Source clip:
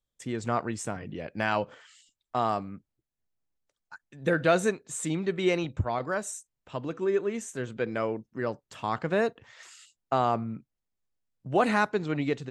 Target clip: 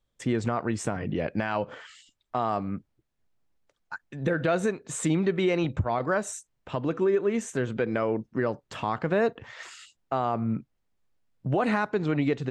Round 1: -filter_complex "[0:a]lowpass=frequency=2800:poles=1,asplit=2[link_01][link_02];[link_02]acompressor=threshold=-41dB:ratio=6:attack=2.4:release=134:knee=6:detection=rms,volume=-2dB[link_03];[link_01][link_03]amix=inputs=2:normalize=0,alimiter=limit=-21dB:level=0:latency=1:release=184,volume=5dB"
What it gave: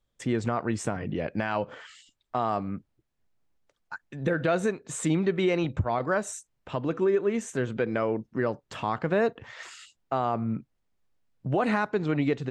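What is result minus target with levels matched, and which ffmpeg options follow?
downward compressor: peak gain reduction +6.5 dB
-filter_complex "[0:a]lowpass=frequency=2800:poles=1,asplit=2[link_01][link_02];[link_02]acompressor=threshold=-33dB:ratio=6:attack=2.4:release=134:knee=6:detection=rms,volume=-2dB[link_03];[link_01][link_03]amix=inputs=2:normalize=0,alimiter=limit=-21dB:level=0:latency=1:release=184,volume=5dB"

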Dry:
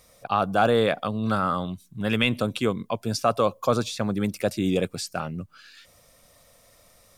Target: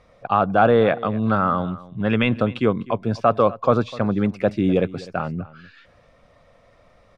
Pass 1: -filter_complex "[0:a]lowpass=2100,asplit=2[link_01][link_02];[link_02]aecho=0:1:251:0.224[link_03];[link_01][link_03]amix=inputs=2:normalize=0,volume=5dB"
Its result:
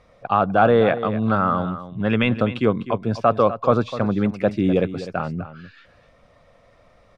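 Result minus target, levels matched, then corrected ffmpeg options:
echo-to-direct +6 dB
-filter_complex "[0:a]lowpass=2100,asplit=2[link_01][link_02];[link_02]aecho=0:1:251:0.112[link_03];[link_01][link_03]amix=inputs=2:normalize=0,volume=5dB"

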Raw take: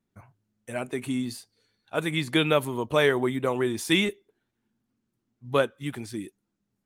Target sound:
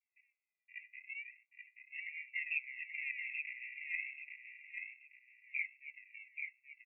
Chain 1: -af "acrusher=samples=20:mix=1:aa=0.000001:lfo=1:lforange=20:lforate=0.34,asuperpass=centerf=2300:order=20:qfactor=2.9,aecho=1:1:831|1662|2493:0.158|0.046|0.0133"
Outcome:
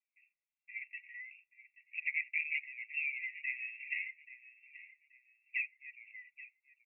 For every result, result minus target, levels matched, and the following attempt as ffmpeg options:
sample-and-hold swept by an LFO: distortion −22 dB; echo-to-direct −11 dB
-af "acrusher=samples=68:mix=1:aa=0.000001:lfo=1:lforange=68:lforate=0.34,asuperpass=centerf=2300:order=20:qfactor=2.9,aecho=1:1:831|1662|2493:0.158|0.046|0.0133"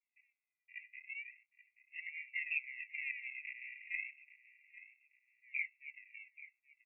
echo-to-direct −11 dB
-af "acrusher=samples=68:mix=1:aa=0.000001:lfo=1:lforange=68:lforate=0.34,asuperpass=centerf=2300:order=20:qfactor=2.9,aecho=1:1:831|1662|2493|3324:0.562|0.163|0.0473|0.0137"

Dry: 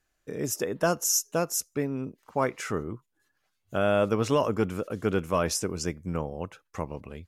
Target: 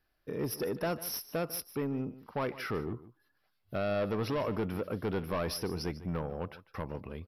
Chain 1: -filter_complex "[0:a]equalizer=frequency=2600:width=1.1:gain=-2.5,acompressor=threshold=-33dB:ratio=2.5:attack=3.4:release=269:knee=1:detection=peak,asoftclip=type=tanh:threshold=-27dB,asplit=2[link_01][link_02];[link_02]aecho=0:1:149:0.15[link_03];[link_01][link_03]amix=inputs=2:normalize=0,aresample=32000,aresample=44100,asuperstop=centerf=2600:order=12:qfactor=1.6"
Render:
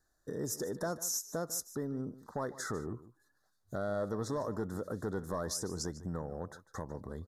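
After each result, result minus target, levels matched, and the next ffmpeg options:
8,000 Hz band +9.5 dB; downward compressor: peak gain reduction +6.5 dB
-filter_complex "[0:a]equalizer=frequency=2600:width=1.1:gain=-2.5,acompressor=threshold=-33dB:ratio=2.5:attack=3.4:release=269:knee=1:detection=peak,asoftclip=type=tanh:threshold=-27dB,asplit=2[link_01][link_02];[link_02]aecho=0:1:149:0.15[link_03];[link_01][link_03]amix=inputs=2:normalize=0,aresample=32000,aresample=44100,asuperstop=centerf=7700:order=12:qfactor=1.6"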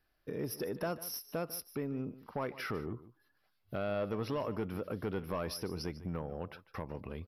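downward compressor: peak gain reduction +6.5 dB
-filter_complex "[0:a]equalizer=frequency=2600:width=1.1:gain=-2.5,acompressor=threshold=-22.5dB:ratio=2.5:attack=3.4:release=269:knee=1:detection=peak,asoftclip=type=tanh:threshold=-27dB,asplit=2[link_01][link_02];[link_02]aecho=0:1:149:0.15[link_03];[link_01][link_03]amix=inputs=2:normalize=0,aresample=32000,aresample=44100,asuperstop=centerf=7700:order=12:qfactor=1.6"

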